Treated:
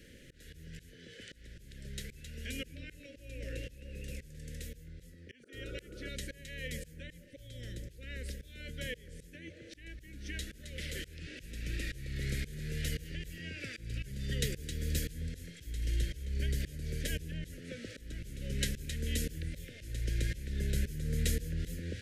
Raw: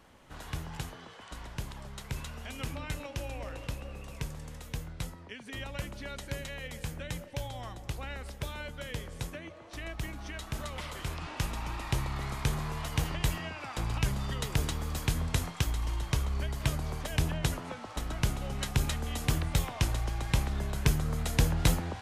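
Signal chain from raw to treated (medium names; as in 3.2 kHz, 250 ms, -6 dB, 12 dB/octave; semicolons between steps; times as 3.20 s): painted sound noise, 5.43–6.09 s, 290–1500 Hz -39 dBFS; slow attack 552 ms; elliptic band-stop 510–1700 Hz, stop band 50 dB; trim +5.5 dB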